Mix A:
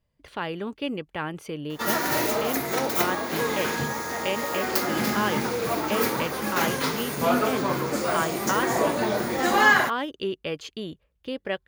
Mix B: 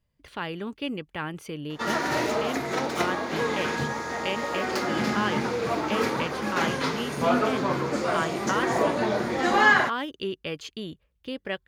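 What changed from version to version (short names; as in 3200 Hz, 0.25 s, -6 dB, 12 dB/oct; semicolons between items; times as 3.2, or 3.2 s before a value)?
speech: add bell 600 Hz -4 dB 1.6 oct; background: add air absorption 79 m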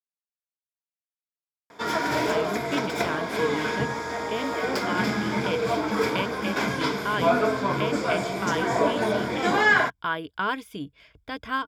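speech: entry +1.90 s; master: add ripple EQ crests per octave 1.7, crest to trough 8 dB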